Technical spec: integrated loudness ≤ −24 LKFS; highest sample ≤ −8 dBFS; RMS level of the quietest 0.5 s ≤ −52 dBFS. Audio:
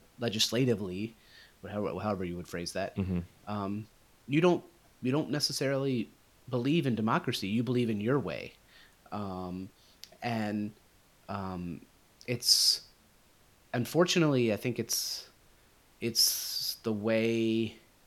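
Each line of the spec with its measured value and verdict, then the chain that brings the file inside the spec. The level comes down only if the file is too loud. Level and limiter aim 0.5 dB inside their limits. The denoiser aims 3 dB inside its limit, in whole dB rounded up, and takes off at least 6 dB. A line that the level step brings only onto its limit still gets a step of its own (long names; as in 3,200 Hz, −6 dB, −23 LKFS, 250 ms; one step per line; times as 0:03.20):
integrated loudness −30.5 LKFS: in spec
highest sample −9.0 dBFS: in spec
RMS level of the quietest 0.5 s −63 dBFS: in spec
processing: no processing needed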